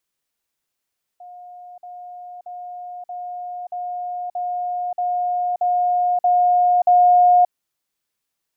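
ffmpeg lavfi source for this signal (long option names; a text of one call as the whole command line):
ffmpeg -f lavfi -i "aevalsrc='pow(10,(-36.5+3*floor(t/0.63))/20)*sin(2*PI*716*t)*clip(min(mod(t,0.63),0.58-mod(t,0.63))/0.005,0,1)':duration=6.3:sample_rate=44100" out.wav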